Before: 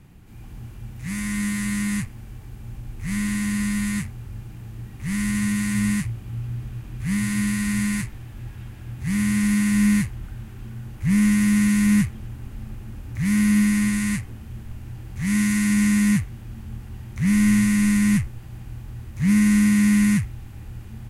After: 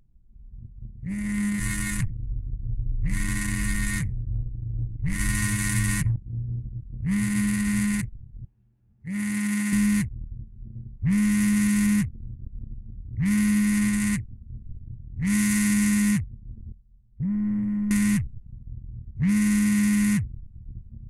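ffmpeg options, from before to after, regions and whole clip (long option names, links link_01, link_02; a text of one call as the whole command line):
ffmpeg -i in.wav -filter_complex "[0:a]asettb=1/sr,asplit=3[link_01][link_02][link_03];[link_01]atrim=end=1.594[link_04];[link_02]atrim=start=1.59:end=6.16,asetpts=PTS-STARTPTS,afade=type=in:duration=0.004:curve=qsin,afade=type=out:start_time=4.566:duration=0.004:curve=qsin,lowshelf=frequency=110:width_type=q:width=1.5:gain=8.5,aecho=1:1:7:0.77,atrim=end_sample=201537,aecho=1:1:87|174|261:0.251|0.0603|0.0145,atrim=end_sample=201537[link_05];[link_03]atrim=start=6.156[link_06];[link_04][link_05]acrossfade=duration=0.004:curve1=hsin:curve2=qsin[link_07];[link_07][link_06]acrossfade=duration=0.004:curve1=qsin:curve2=hsin,asettb=1/sr,asplit=3[link_08][link_09][link_10];[link_08]atrim=end=8.454[link_11];[link_09]atrim=start=8.45:end=9.73,asetpts=PTS-STARTPTS,afade=type=in:duration=0.004:curve=qsin,afade=type=out:start_time=1.276:duration=0.004:curve=qsin,highpass=81,lowshelf=frequency=210:gain=-11[link_12];[link_10]atrim=start=9.726[link_13];[link_11][link_12]acrossfade=duration=0.004:curve1=hsin:curve2=qsin[link_14];[link_14][link_13]acrossfade=duration=0.004:curve1=qsin:curve2=hsin,asettb=1/sr,asplit=3[link_15][link_16][link_17];[link_15]atrim=end=16.724[link_18];[link_16]atrim=start=16.72:end=17.91,asetpts=PTS-STARTPTS,afade=type=in:duration=0.004:curve=qsin,afade=type=out:start_time=1.186:duration=0.004:curve=qsin,agate=range=-11dB:threshold=-28dB:ratio=16:release=100:detection=peak,highshelf=frequency=2200:gain=-7.5,acompressor=threshold=-26dB:ratio=2.5:attack=3.2:release=140:knee=1:detection=peak[link_19];[link_17]atrim=start=17.906[link_20];[link_18][link_19]acrossfade=duration=0.004:curve1=hsin:curve2=qsin[link_21];[link_21][link_20]acrossfade=duration=0.004:curve1=qsin:curve2=hsin,anlmdn=158,acompressor=threshold=-19dB:ratio=6,highshelf=frequency=6600:gain=10.5" out.wav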